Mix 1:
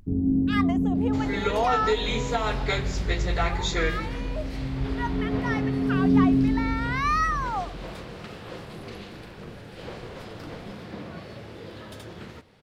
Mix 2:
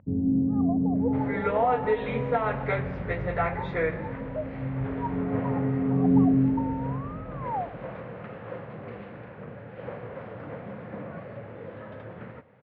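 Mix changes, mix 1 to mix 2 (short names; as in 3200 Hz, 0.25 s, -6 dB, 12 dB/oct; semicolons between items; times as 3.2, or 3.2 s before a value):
speech: add Chebyshev low-pass 940 Hz, order 5; master: add speaker cabinet 110–2100 Hz, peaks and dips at 120 Hz +5 dB, 350 Hz -7 dB, 540 Hz +6 dB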